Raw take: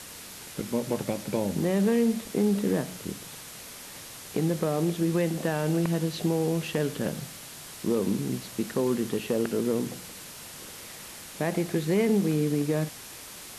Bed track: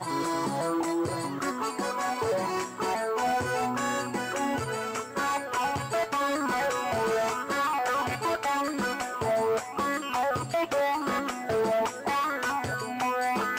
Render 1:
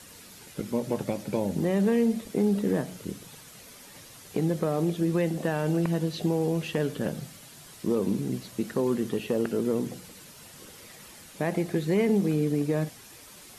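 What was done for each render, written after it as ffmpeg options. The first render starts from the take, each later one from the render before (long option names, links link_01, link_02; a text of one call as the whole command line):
ffmpeg -i in.wav -af "afftdn=noise_reduction=8:noise_floor=-44" out.wav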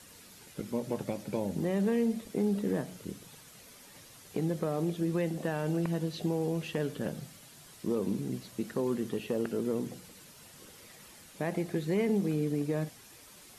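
ffmpeg -i in.wav -af "volume=-5dB" out.wav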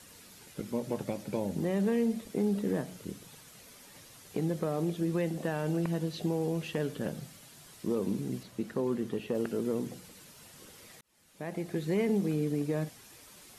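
ffmpeg -i in.wav -filter_complex "[0:a]asettb=1/sr,asplit=3[link_01][link_02][link_03];[link_01]atrim=end=8.434[link_04];[link_02]atrim=start=8.43:end=9.35,asetpts=PTS-STARTPTS,afade=type=in:duration=0.004:curve=qsin,afade=type=out:start_time=0.916:duration=0.004:curve=qsin,highshelf=frequency=3800:gain=-6.5[link_05];[link_03]atrim=start=9.346[link_06];[link_04][link_05]acrossfade=duration=0.004:curve1=hsin:curve2=qsin[link_07];[link_07][link_06]acrossfade=duration=0.004:curve1=qsin:curve2=hsin,asplit=2[link_08][link_09];[link_08]atrim=end=11.01,asetpts=PTS-STARTPTS,afade=type=out:start_time=11.006:duration=0.004:curve=hsin[link_10];[link_09]atrim=start=11.01,asetpts=PTS-STARTPTS,afade=type=in:duration=0.86[link_11];[link_10][link_11]concat=n=2:v=0:a=1" out.wav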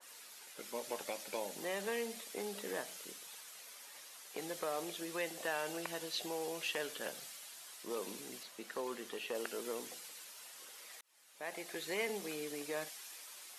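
ffmpeg -i in.wav -af "highpass=700,adynamicequalizer=threshold=0.00178:dfrequency=1900:dqfactor=0.7:tfrequency=1900:tqfactor=0.7:attack=5:release=100:ratio=0.375:range=2.5:mode=boostabove:tftype=highshelf" out.wav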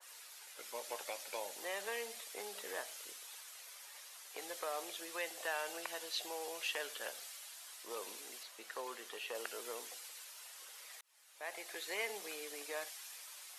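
ffmpeg -i in.wav -af "highpass=570" out.wav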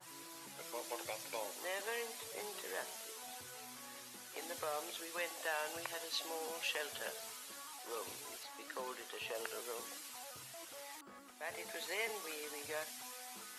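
ffmpeg -i in.wav -i bed.wav -filter_complex "[1:a]volume=-28dB[link_01];[0:a][link_01]amix=inputs=2:normalize=0" out.wav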